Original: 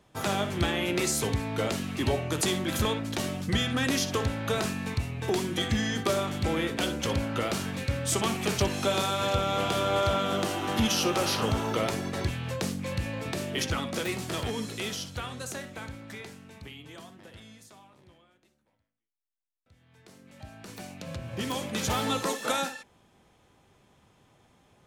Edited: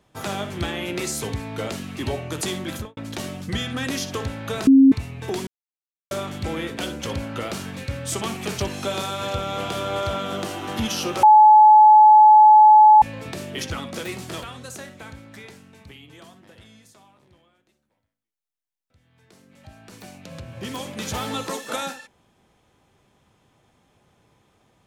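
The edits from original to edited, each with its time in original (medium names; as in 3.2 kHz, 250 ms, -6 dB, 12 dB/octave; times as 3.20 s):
2.69–2.97 s: studio fade out
4.67–4.92 s: bleep 269 Hz -8 dBFS
5.47–6.11 s: mute
11.23–13.02 s: bleep 856 Hz -7 dBFS
14.43–15.19 s: delete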